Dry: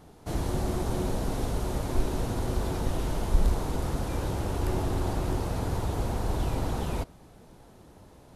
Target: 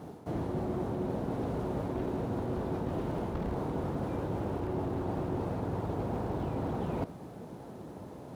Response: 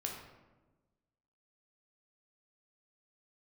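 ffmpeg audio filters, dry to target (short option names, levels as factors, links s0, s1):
-filter_complex "[0:a]acrusher=bits=5:mode=log:mix=0:aa=0.000001,tiltshelf=f=1400:g=6.5,acrossover=split=3600[s0][s1];[s1]acompressor=threshold=0.00126:ratio=4:attack=1:release=60[s2];[s0][s2]amix=inputs=2:normalize=0,highpass=130,areverse,acompressor=threshold=0.0178:ratio=6,areverse,volume=1.58"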